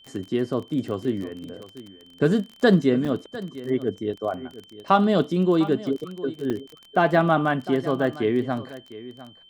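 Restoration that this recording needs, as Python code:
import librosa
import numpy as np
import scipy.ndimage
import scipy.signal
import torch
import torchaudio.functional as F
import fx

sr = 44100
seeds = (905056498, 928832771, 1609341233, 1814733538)

y = fx.fix_declick_ar(x, sr, threshold=6.5)
y = fx.notch(y, sr, hz=3100.0, q=30.0)
y = fx.fix_interpolate(y, sr, at_s=(2.51, 3.05, 6.5), length_ms=5.1)
y = fx.fix_echo_inverse(y, sr, delay_ms=702, level_db=-16.5)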